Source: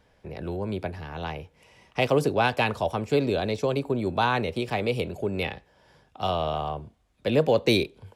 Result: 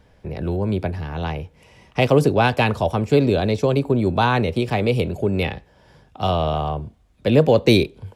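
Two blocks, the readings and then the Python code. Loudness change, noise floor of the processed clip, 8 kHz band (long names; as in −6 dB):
+6.5 dB, −56 dBFS, can't be measured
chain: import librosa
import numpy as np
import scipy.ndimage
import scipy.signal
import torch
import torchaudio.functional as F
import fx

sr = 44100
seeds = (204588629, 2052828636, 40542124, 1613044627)

y = fx.low_shelf(x, sr, hz=290.0, db=7.5)
y = F.gain(torch.from_numpy(y), 4.0).numpy()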